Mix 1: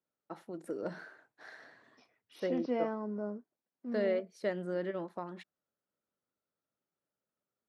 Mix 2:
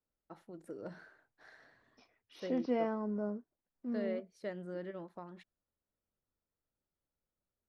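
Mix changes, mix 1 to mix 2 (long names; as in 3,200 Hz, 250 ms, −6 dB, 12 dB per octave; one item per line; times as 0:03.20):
first voice −7.5 dB
master: remove high-pass filter 180 Hz 12 dB per octave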